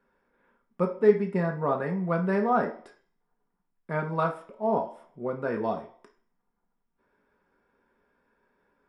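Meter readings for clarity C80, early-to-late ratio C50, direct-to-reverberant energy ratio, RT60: 15.0 dB, 10.0 dB, 2.0 dB, 0.50 s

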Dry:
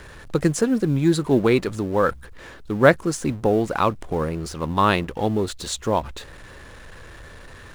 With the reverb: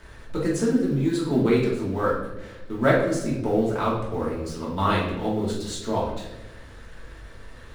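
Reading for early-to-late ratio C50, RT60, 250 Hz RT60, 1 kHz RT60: 3.5 dB, 1.0 s, 1.4 s, 0.80 s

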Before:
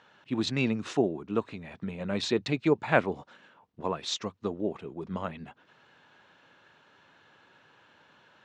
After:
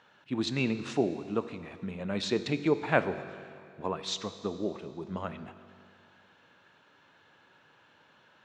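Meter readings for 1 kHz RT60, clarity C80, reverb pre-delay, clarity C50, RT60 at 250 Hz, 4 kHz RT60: 2.4 s, 12.5 dB, 21 ms, 12.0 dB, 2.4 s, 2.3 s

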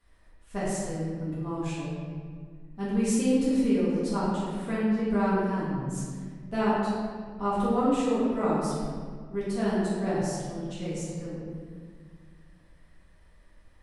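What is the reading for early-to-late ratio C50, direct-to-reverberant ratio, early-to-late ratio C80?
−2.5 dB, −10.5 dB, 0.0 dB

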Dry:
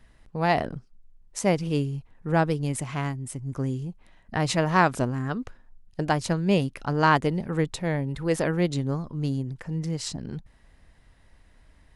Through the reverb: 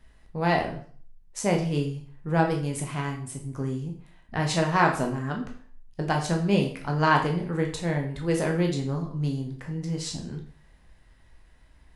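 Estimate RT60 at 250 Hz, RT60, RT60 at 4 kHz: 0.50 s, 0.50 s, 0.45 s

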